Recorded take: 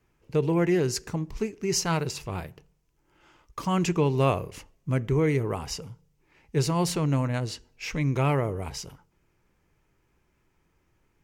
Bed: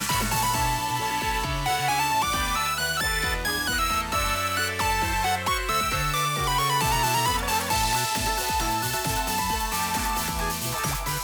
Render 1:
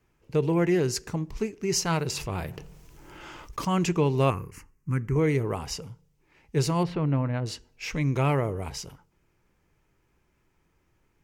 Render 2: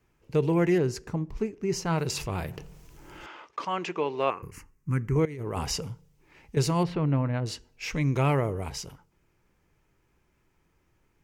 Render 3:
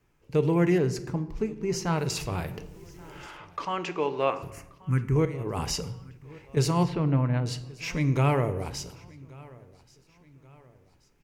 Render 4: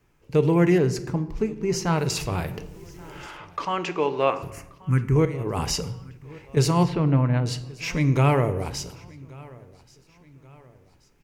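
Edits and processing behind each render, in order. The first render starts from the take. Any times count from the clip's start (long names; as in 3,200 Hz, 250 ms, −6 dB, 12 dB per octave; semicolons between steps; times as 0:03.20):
0:02.05–0:03.65: envelope flattener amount 50%; 0:04.30–0:05.16: phaser with its sweep stopped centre 1,500 Hz, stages 4; 0:06.83–0:07.46: high-frequency loss of the air 380 metres
0:00.78–0:01.98: high-shelf EQ 2,300 Hz −10.5 dB; 0:03.26–0:04.43: band-pass filter 450–3,400 Hz; 0:05.25–0:06.57: compressor whose output falls as the input rises −33 dBFS
repeating echo 1,131 ms, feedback 44%, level −23.5 dB; rectangular room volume 350 cubic metres, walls mixed, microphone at 0.32 metres
level +4 dB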